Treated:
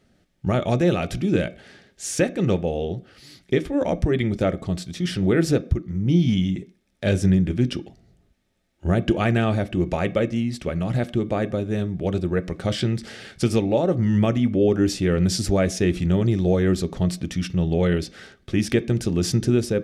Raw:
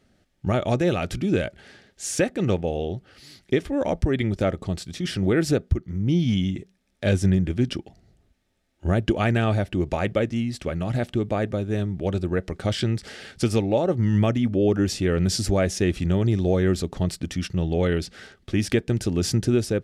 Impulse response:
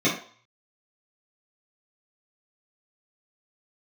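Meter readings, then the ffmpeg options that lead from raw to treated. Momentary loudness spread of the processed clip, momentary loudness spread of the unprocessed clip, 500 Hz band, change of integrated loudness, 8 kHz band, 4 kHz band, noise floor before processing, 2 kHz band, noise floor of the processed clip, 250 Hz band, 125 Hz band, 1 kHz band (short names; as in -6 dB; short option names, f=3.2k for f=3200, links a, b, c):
7 LU, 8 LU, +1.5 dB, +1.5 dB, +0.5 dB, +0.5 dB, -66 dBFS, +0.5 dB, -64 dBFS, +2.0 dB, +1.0 dB, +0.5 dB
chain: -filter_complex "[0:a]asplit=2[a][b];[1:a]atrim=start_sample=2205[c];[b][c]afir=irnorm=-1:irlink=0,volume=-27.5dB[d];[a][d]amix=inputs=2:normalize=0"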